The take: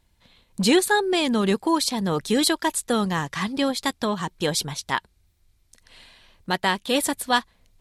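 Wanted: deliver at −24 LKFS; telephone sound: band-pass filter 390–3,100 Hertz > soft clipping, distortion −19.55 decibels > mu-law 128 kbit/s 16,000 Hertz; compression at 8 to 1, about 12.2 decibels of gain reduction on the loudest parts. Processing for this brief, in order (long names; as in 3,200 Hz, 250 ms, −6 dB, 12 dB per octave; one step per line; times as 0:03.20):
downward compressor 8 to 1, threshold −27 dBFS
band-pass filter 390–3,100 Hz
soft clipping −21 dBFS
level +12 dB
mu-law 128 kbit/s 16,000 Hz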